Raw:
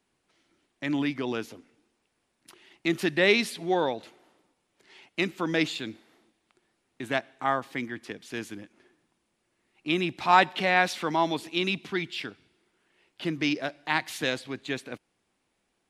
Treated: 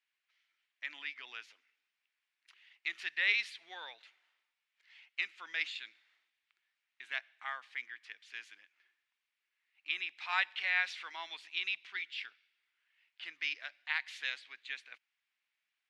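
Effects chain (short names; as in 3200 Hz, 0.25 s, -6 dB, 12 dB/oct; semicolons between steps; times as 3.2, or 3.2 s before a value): ladder band-pass 2600 Hz, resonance 30%; gain +4 dB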